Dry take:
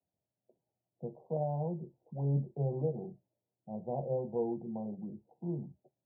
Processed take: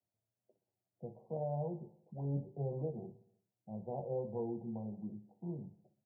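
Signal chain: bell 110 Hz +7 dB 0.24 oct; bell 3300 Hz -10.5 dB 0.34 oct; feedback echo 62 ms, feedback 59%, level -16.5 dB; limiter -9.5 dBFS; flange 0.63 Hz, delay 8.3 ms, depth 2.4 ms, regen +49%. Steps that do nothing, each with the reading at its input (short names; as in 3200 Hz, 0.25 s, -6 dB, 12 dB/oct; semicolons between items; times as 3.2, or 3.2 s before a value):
bell 3300 Hz: input band ends at 810 Hz; limiter -9.5 dBFS: input peak -22.0 dBFS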